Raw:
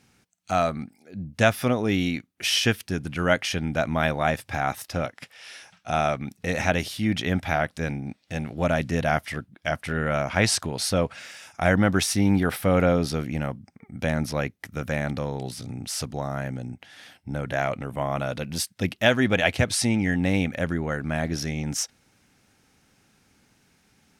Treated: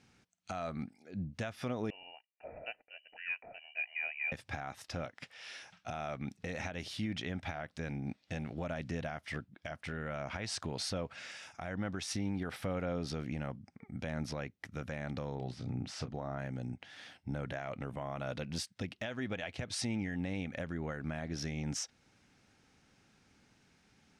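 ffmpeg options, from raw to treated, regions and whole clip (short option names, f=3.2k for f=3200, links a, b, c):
-filter_complex "[0:a]asettb=1/sr,asplit=3[a][b][c];[a]atrim=end=1.904[d];[b]atrim=start=1.9:end=4.32,asetpts=PTS-STARTPTS,afade=t=in:d=0.004:c=qsin,afade=t=out:st=2.416:d=0.004:c=qsin,asplit=3[e][f][g];[e]bandpass=f=730:t=q:w=8,volume=0dB[h];[f]bandpass=f=1.09k:t=q:w=8,volume=-6dB[i];[g]bandpass=f=2.44k:t=q:w=8,volume=-9dB[j];[h][i][j]amix=inputs=3:normalize=0,lowpass=f=2.6k:t=q:w=0.5098,lowpass=f=2.6k:t=q:w=0.6013,lowpass=f=2.6k:t=q:w=0.9,lowpass=f=2.6k:t=q:w=2.563,afreqshift=-3100[k];[c]atrim=start=4.316[l];[d][k]acrossfade=d=0.004:c1=hsin:c2=qsin[m];[m][l]acrossfade=d=0.004:c1=qsin:c2=hsin,asettb=1/sr,asplit=3[n][o][p];[n]atrim=end=15.354[q];[o]atrim=start=15.35:end=16.39,asetpts=PTS-STARTPTS,afade=t=in:d=0.004:c=qsin,afade=t=out:st=1.036:d=0.004:c=qsin,aemphasis=mode=reproduction:type=75fm,asplit=2[r][s];[s]adelay=32,volume=-11.5dB[t];[r][t]amix=inputs=2:normalize=0,atrim=end_sample=45864[u];[p]atrim=start=16.386[v];[q][u]acrossfade=d=0.004:c1=hsin:c2=qsin[w];[w][v]acrossfade=d=0.004:c1=qsin:c2=hsin,lowpass=6.7k,acompressor=threshold=-23dB:ratio=5,alimiter=limit=-23dB:level=0:latency=1:release=270,volume=-4.5dB"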